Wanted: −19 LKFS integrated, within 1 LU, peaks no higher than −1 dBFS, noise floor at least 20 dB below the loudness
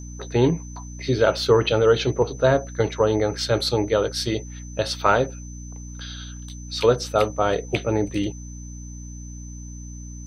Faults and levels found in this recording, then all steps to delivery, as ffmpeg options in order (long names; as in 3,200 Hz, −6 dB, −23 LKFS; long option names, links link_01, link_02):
mains hum 60 Hz; hum harmonics up to 300 Hz; level of the hum −34 dBFS; interfering tone 6,100 Hz; level of the tone −44 dBFS; integrated loudness −22.0 LKFS; sample peak −2.5 dBFS; target loudness −19.0 LKFS
→ -af "bandreject=frequency=60:width_type=h:width=6,bandreject=frequency=120:width_type=h:width=6,bandreject=frequency=180:width_type=h:width=6,bandreject=frequency=240:width_type=h:width=6,bandreject=frequency=300:width_type=h:width=6"
-af "bandreject=frequency=6100:width=30"
-af "volume=3dB,alimiter=limit=-1dB:level=0:latency=1"